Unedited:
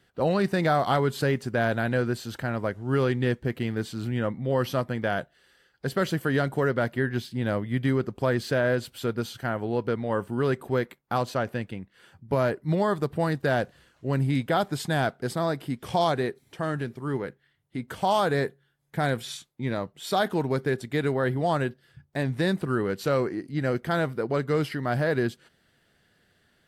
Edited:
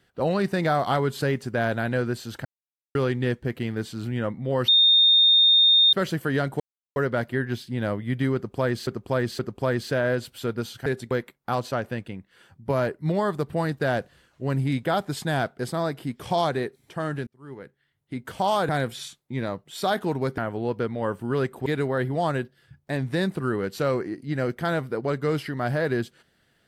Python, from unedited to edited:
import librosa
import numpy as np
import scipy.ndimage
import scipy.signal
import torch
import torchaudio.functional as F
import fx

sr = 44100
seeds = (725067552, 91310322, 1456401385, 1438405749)

y = fx.edit(x, sr, fx.silence(start_s=2.45, length_s=0.5),
    fx.bleep(start_s=4.68, length_s=1.25, hz=3660.0, db=-13.5),
    fx.insert_silence(at_s=6.6, length_s=0.36),
    fx.repeat(start_s=7.99, length_s=0.52, count=3),
    fx.swap(start_s=9.46, length_s=1.28, other_s=20.67, other_length_s=0.25),
    fx.fade_in_span(start_s=16.9, length_s=0.89),
    fx.cut(start_s=18.32, length_s=0.66), tone=tone)